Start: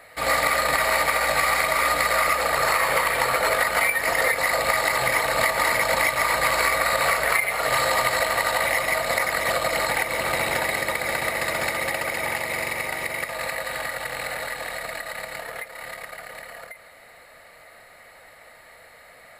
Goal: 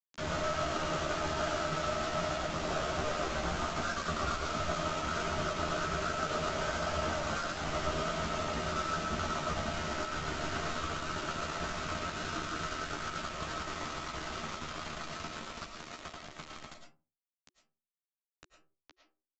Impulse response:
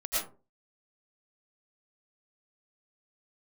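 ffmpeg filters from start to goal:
-filter_complex "[0:a]lowpass=4400,aemphasis=mode=reproduction:type=50fm,acompressor=threshold=0.00562:ratio=2.5,asetrate=37084,aresample=44100,atempo=1.18921,flanger=delay=19.5:depth=6.3:speed=1.3,aresample=16000,aeval=exprs='val(0)*gte(abs(val(0)),0.00794)':c=same,aresample=44100,afreqshift=-370,asplit=2[s0][s1];[s1]adelay=13,volume=0.631[s2];[s0][s2]amix=inputs=2:normalize=0,asplit=2[s3][s4];[1:a]atrim=start_sample=2205[s5];[s4][s5]afir=irnorm=-1:irlink=0,volume=0.422[s6];[s3][s6]amix=inputs=2:normalize=0,volume=1.5"

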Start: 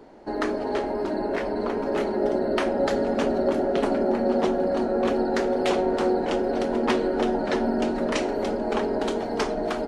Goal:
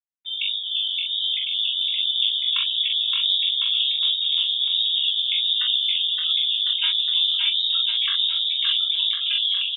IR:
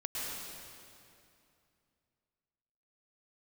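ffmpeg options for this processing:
-filter_complex "[0:a]asetrate=40517,aresample=44100,equalizer=f=100:t=o:w=0.67:g=-8,equalizer=f=1000:t=o:w=0.67:g=8,equalizer=f=2500:t=o:w=0.67:g=4,afftfilt=real='re*gte(hypot(re,im),0.158)':imag='im*gte(hypot(re,im),0.158)':win_size=1024:overlap=0.75,asplit=2[s0][s1];[s1]adelay=42,volume=0.631[s2];[s0][s2]amix=inputs=2:normalize=0,acrusher=bits=8:mix=0:aa=0.000001,lowpass=f=3300:t=q:w=0.5098,lowpass=f=3300:t=q:w=0.6013,lowpass=f=3300:t=q:w=0.9,lowpass=f=3300:t=q:w=2.563,afreqshift=-3900,dynaudnorm=f=110:g=3:m=2.66,atempo=1.1,asplit=2[s3][s4];[s4]aecho=0:1:570|1054|1466|1816|2114:0.631|0.398|0.251|0.158|0.1[s5];[s3][s5]amix=inputs=2:normalize=0,flanger=delay=15.5:depth=7.2:speed=1.4,lowshelf=f=330:g=10.5,volume=0.473"

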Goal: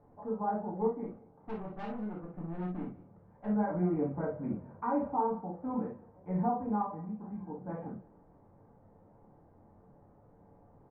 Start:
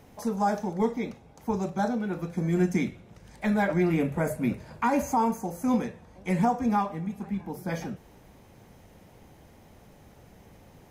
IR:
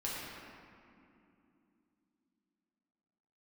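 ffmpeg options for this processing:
-filter_complex "[0:a]lowpass=f=1200:w=0.5412,lowpass=f=1200:w=1.3066,lowshelf=f=110:g=-5.5,asettb=1/sr,asplit=3[s0][s1][s2];[s0]atrim=end=1.044[s3];[s1]atrim=start=1.04:end=3.46,asetpts=PTS-STARTPTS,afade=t=in:d=0.004:c=qsin,afade=t=out:st=2.416:d=0.004:c=qsin,aeval=exprs='(tanh(31.6*val(0)+0.35)-tanh(0.35))/31.6':c=same[s4];[s2]atrim=start=3.456[s5];[s3][s4]acrossfade=d=0.004:c1=hsin:c2=qsin[s6];[s6][s5]acrossfade=d=0.004:c1=qsin:c2=hsin,aecho=1:1:182:0.0841[s7];[1:a]atrim=start_sample=2205,atrim=end_sample=3087[s8];[s7][s8]afir=irnorm=-1:irlink=0,volume=0.531"

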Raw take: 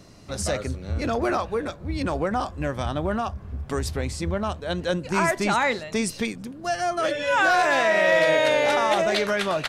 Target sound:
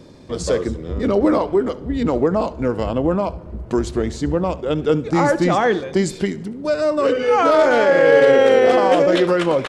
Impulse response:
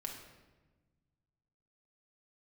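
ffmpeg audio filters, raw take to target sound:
-filter_complex "[0:a]equalizer=f=410:t=o:w=2.2:g=10.5,asetrate=38170,aresample=44100,atempo=1.15535,asplit=2[s0][s1];[1:a]atrim=start_sample=2205,adelay=70[s2];[s1][s2]afir=irnorm=-1:irlink=0,volume=0.15[s3];[s0][s3]amix=inputs=2:normalize=0"

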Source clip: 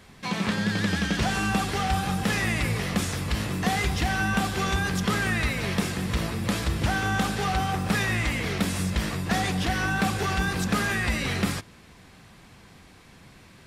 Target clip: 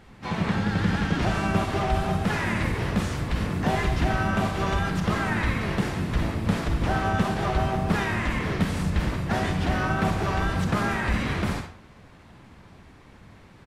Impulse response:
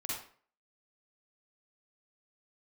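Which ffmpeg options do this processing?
-filter_complex "[0:a]aeval=exprs='0.211*(cos(1*acos(clip(val(0)/0.211,-1,1)))-cos(1*PI/2))+0.00168*(cos(6*acos(clip(val(0)/0.211,-1,1)))-cos(6*PI/2))':c=same,asplit=2[s0][s1];[1:a]atrim=start_sample=2205[s2];[s1][s2]afir=irnorm=-1:irlink=0,volume=0.708[s3];[s0][s3]amix=inputs=2:normalize=0,asplit=4[s4][s5][s6][s7];[s5]asetrate=22050,aresample=44100,atempo=2,volume=0.562[s8];[s6]asetrate=37084,aresample=44100,atempo=1.18921,volume=0.708[s9];[s7]asetrate=52444,aresample=44100,atempo=0.840896,volume=0.158[s10];[s4][s8][s9][s10]amix=inputs=4:normalize=0,highshelf=f=2900:g=-10.5,volume=0.596"

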